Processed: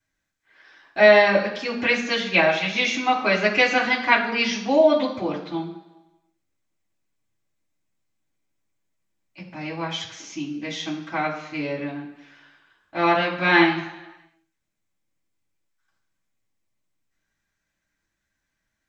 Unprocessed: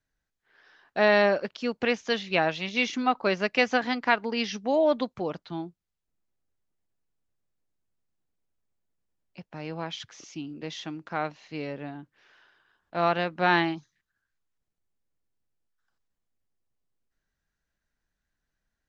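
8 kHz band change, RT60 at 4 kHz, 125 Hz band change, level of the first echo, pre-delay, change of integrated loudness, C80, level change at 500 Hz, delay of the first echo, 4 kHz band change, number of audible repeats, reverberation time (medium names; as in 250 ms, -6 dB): no reading, 1.0 s, +3.5 dB, no echo, 3 ms, +6.5 dB, 10.5 dB, +6.0 dB, no echo, +6.5 dB, no echo, 1.1 s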